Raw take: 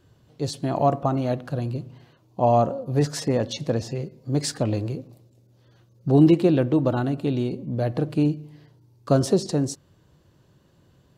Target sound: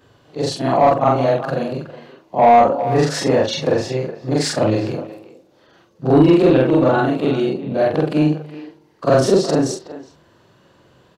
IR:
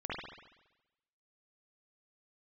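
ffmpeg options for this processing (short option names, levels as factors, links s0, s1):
-filter_complex "[0:a]afftfilt=real='re':imag='-im':win_size=4096:overlap=0.75,asplit=2[s0][s1];[s1]adelay=370,highpass=300,lowpass=3400,asoftclip=type=hard:threshold=0.119,volume=0.178[s2];[s0][s2]amix=inputs=2:normalize=0,asplit=2[s3][s4];[s4]highpass=f=720:p=1,volume=7.08,asoftclip=type=tanh:threshold=0.376[s5];[s3][s5]amix=inputs=2:normalize=0,lowpass=f=2300:p=1,volume=0.501,volume=2.37"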